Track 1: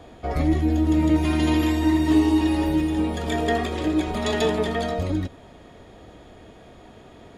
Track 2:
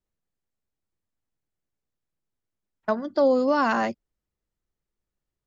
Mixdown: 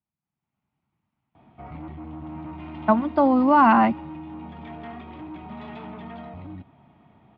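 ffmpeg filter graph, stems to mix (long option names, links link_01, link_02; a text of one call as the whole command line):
ffmpeg -i stem1.wav -i stem2.wav -filter_complex "[0:a]asoftclip=type=tanh:threshold=-24dB,adelay=1350,volume=-7.5dB[link_01];[1:a]dynaudnorm=framelen=190:gausssize=5:maxgain=16dB,volume=-2dB[link_02];[link_01][link_02]amix=inputs=2:normalize=0,highpass=100,equalizer=frequency=140:width_type=q:width=4:gain=8,equalizer=frequency=210:width_type=q:width=4:gain=4,equalizer=frequency=520:width_type=q:width=4:gain=-10,equalizer=frequency=880:width_type=q:width=4:gain=5,equalizer=frequency=1700:width_type=q:width=4:gain=-9,lowpass=frequency=2600:width=0.5412,lowpass=frequency=2600:width=1.3066,equalizer=frequency=420:width_type=o:width=0.7:gain=-7.5" out.wav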